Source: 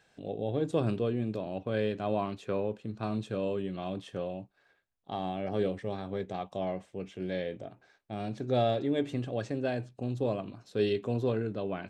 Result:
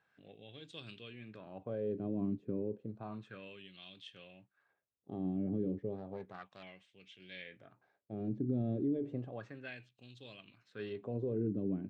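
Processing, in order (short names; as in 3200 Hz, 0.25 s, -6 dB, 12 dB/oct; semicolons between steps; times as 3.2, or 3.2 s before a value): 5.96–6.63 self-modulated delay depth 0.13 ms; wah 0.32 Hz 280–3400 Hz, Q 2.3; limiter -30.5 dBFS, peak gain reduction 9 dB; EQ curve 130 Hz 0 dB, 730 Hz -20 dB, 2200 Hz -14 dB; gain +14 dB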